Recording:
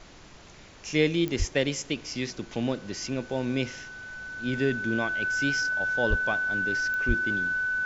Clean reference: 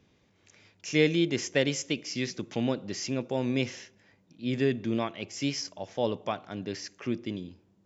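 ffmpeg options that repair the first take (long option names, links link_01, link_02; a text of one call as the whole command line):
ffmpeg -i in.wav -filter_complex "[0:a]adeclick=threshold=4,bandreject=frequency=1500:width=30,asplit=3[link_01][link_02][link_03];[link_01]afade=type=out:start_time=1.38:duration=0.02[link_04];[link_02]highpass=frequency=140:width=0.5412,highpass=frequency=140:width=1.3066,afade=type=in:start_time=1.38:duration=0.02,afade=type=out:start_time=1.5:duration=0.02[link_05];[link_03]afade=type=in:start_time=1.5:duration=0.02[link_06];[link_04][link_05][link_06]amix=inputs=3:normalize=0,asplit=3[link_07][link_08][link_09];[link_07]afade=type=out:start_time=6.09:duration=0.02[link_10];[link_08]highpass=frequency=140:width=0.5412,highpass=frequency=140:width=1.3066,afade=type=in:start_time=6.09:duration=0.02,afade=type=out:start_time=6.21:duration=0.02[link_11];[link_09]afade=type=in:start_time=6.21:duration=0.02[link_12];[link_10][link_11][link_12]amix=inputs=3:normalize=0,asplit=3[link_13][link_14][link_15];[link_13]afade=type=out:start_time=7.07:duration=0.02[link_16];[link_14]highpass=frequency=140:width=0.5412,highpass=frequency=140:width=1.3066,afade=type=in:start_time=7.07:duration=0.02,afade=type=out:start_time=7.19:duration=0.02[link_17];[link_15]afade=type=in:start_time=7.19:duration=0.02[link_18];[link_16][link_17][link_18]amix=inputs=3:normalize=0,afftdn=noise_reduction=17:noise_floor=-48" out.wav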